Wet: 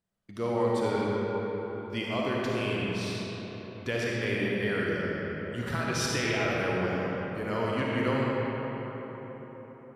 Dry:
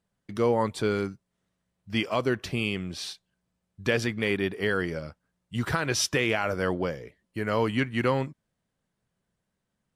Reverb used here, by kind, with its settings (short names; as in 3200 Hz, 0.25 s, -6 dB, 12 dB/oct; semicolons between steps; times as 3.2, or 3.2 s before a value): digital reverb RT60 4.7 s, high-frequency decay 0.5×, pre-delay 15 ms, DRR -5 dB; gain -7.5 dB